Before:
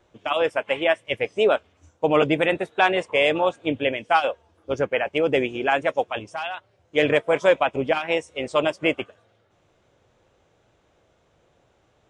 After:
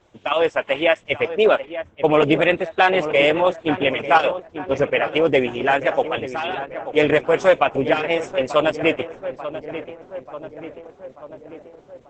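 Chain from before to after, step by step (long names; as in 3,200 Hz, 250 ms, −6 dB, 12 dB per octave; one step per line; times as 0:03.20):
0:01.28–0:02.52: low-pass that shuts in the quiet parts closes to 1,500 Hz, open at −15.5 dBFS
feedback echo with a low-pass in the loop 888 ms, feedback 64%, low-pass 1,900 Hz, level −11.5 dB
level +4 dB
Opus 10 kbit/s 48,000 Hz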